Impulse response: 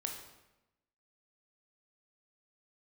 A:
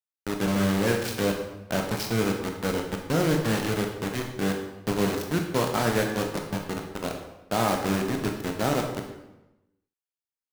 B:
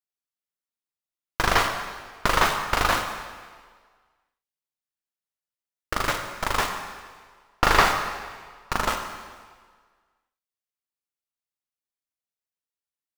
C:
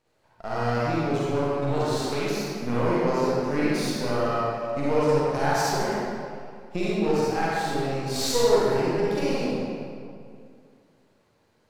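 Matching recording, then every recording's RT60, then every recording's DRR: A; 0.95 s, 1.7 s, 2.3 s; 2.0 dB, 4.0 dB, -8.5 dB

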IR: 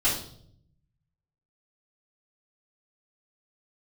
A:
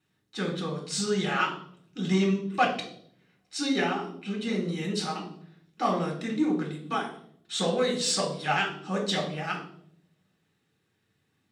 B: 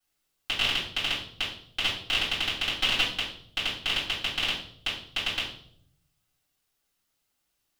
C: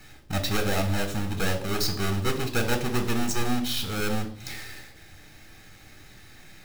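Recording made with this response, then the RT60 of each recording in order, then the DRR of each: B; 0.65 s, 0.65 s, 0.65 s; -0.5 dB, -10.5 dB, 4.5 dB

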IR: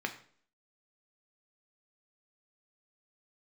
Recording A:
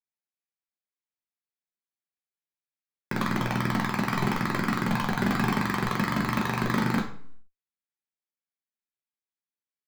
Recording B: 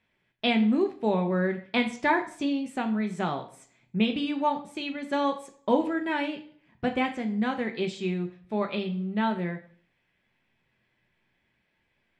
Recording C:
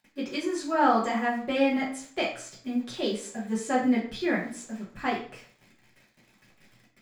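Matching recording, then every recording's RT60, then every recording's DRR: B; 0.50 s, 0.50 s, 0.50 s; -1.5 dB, 4.5 dB, -5.5 dB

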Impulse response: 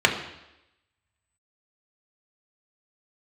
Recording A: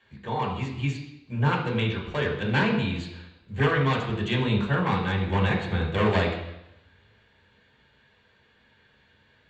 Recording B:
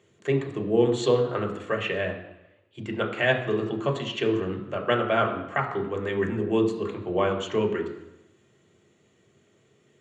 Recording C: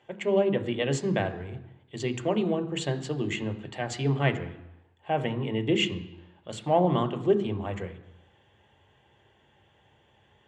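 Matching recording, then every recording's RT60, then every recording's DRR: B; 0.90 s, 0.90 s, 0.90 s; -4.0 dB, 1.0 dB, 8.0 dB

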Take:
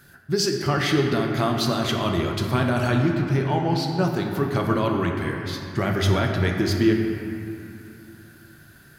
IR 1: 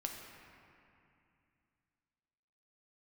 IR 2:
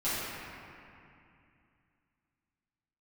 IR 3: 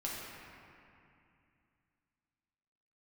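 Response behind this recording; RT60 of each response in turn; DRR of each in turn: 1; 2.5 s, 2.5 s, 2.5 s; 1.0 dB, -14.5 dB, -5.5 dB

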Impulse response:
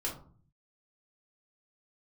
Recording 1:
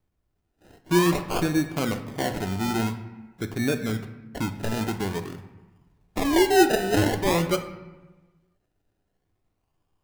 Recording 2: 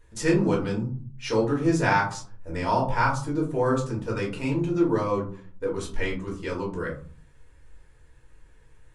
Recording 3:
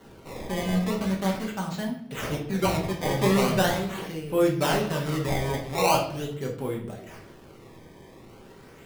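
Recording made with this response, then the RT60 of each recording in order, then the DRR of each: 2; 1.1 s, 0.45 s, 0.65 s; 6.0 dB, -3.5 dB, -1.0 dB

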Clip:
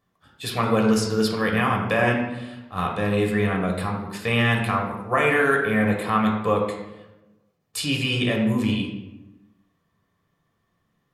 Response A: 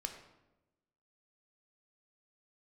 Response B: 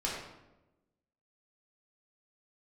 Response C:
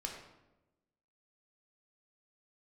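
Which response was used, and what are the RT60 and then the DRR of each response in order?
C; 1.0 s, 1.0 s, 1.0 s; 4.5 dB, -6.0 dB, 0.0 dB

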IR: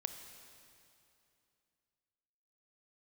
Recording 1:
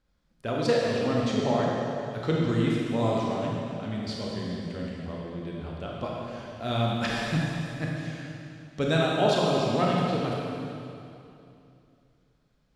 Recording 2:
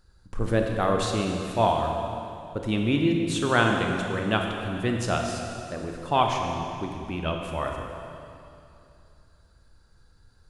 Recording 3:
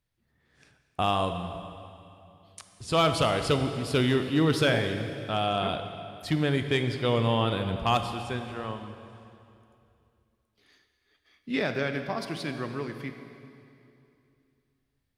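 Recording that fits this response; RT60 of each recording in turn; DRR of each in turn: 3; 2.7 s, 2.7 s, 2.7 s; -3.5 dB, 2.0 dB, 7.0 dB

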